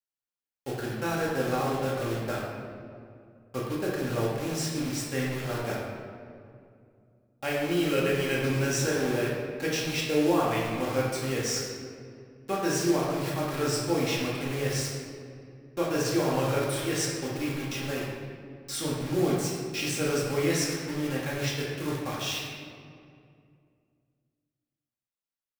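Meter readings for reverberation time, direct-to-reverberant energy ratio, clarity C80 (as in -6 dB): 2.4 s, -5.5 dB, 2.0 dB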